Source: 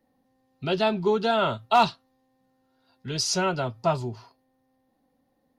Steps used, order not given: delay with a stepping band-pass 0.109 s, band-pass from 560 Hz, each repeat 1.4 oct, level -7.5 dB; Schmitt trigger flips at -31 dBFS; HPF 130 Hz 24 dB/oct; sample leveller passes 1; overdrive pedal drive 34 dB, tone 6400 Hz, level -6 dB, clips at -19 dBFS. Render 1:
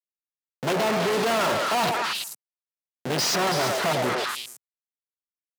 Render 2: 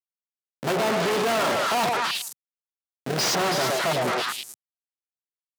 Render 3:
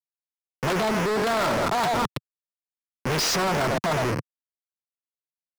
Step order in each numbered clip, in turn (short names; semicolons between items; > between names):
sample leveller > Schmitt trigger > delay with a stepping band-pass > overdrive pedal > HPF; Schmitt trigger > delay with a stepping band-pass > overdrive pedal > sample leveller > HPF; sample leveller > delay with a stepping band-pass > Schmitt trigger > HPF > overdrive pedal